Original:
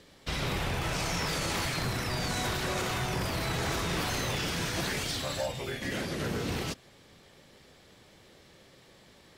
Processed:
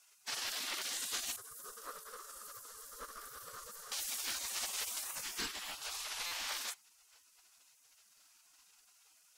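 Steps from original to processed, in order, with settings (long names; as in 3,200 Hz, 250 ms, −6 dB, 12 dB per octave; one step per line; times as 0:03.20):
gate on every frequency bin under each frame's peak −20 dB weak
0:01.36–0:03.92: drawn EQ curve 110 Hz 0 dB, 310 Hz −14 dB, 440 Hz +3 dB, 830 Hz −17 dB, 1,200 Hz +3 dB, 2,400 Hz −25 dB, 11,000 Hz −8 dB
buffer that repeats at 0:06.26, samples 256, times 8
level +3.5 dB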